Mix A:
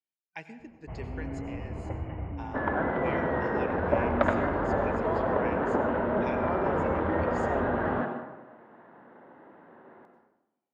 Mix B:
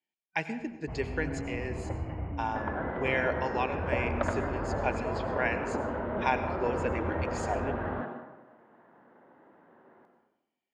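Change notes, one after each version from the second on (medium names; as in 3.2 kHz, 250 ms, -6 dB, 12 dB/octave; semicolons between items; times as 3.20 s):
speech +10.5 dB; second sound -6.0 dB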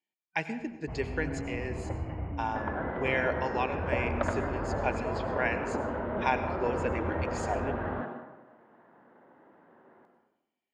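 no change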